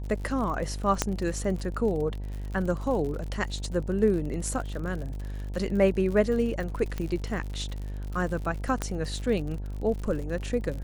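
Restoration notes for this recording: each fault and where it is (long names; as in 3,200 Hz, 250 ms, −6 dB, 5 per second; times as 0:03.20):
mains buzz 50 Hz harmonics 19 −34 dBFS
surface crackle 63 per second −34 dBFS
0:01.02: click −8 dBFS
0:03.87: drop-out 2.2 ms
0:06.98: click −19 dBFS
0:08.82: click −14 dBFS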